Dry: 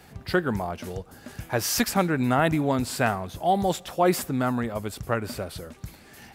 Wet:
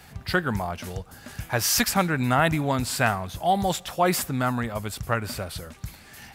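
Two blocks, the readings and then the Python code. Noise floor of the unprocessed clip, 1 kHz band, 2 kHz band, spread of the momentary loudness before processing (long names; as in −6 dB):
−51 dBFS, +1.5 dB, +3.5 dB, 16 LU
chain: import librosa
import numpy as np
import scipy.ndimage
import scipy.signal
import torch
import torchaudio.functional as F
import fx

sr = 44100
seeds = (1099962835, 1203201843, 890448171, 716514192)

y = fx.peak_eq(x, sr, hz=360.0, db=-8.0, octaves=1.8)
y = y * librosa.db_to_amplitude(4.0)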